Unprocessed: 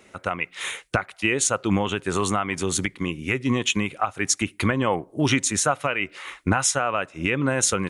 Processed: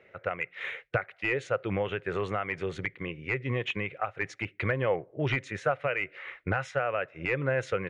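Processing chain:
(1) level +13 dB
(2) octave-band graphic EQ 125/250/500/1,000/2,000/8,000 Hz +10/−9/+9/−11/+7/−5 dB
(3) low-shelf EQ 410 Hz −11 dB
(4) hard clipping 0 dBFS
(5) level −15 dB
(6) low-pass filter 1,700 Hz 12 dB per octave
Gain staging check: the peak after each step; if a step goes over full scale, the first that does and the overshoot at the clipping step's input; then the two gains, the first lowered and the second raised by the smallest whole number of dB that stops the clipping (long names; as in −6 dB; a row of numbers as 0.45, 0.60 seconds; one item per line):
+8.0, +10.5, +9.0, 0.0, −15.0, −15.0 dBFS
step 1, 9.0 dB
step 1 +4 dB, step 5 −6 dB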